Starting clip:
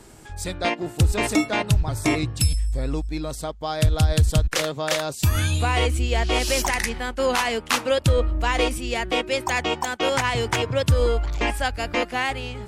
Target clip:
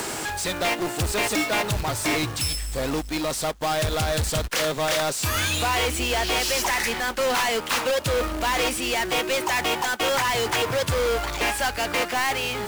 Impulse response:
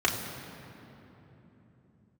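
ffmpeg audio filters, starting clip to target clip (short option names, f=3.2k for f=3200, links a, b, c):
-filter_complex "[0:a]acompressor=mode=upward:threshold=-27dB:ratio=2.5,asplit=2[a][b];[b]highpass=f=720:p=1,volume=29dB,asoftclip=type=tanh:threshold=-9dB[c];[a][c]amix=inputs=2:normalize=0,lowpass=f=7.2k:p=1,volume=-6dB,acrusher=bits=2:mode=log:mix=0:aa=0.000001,volume=-8.5dB"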